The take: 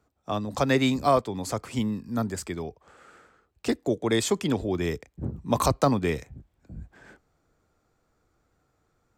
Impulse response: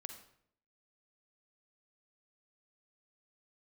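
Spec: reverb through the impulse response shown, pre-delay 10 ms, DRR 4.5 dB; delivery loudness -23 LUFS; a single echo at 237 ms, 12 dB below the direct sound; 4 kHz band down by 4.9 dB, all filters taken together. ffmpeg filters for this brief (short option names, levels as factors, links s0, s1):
-filter_complex "[0:a]equalizer=f=4000:t=o:g=-6,aecho=1:1:237:0.251,asplit=2[s0][s1];[1:a]atrim=start_sample=2205,adelay=10[s2];[s1][s2]afir=irnorm=-1:irlink=0,volume=0.944[s3];[s0][s3]amix=inputs=2:normalize=0,volume=1.41"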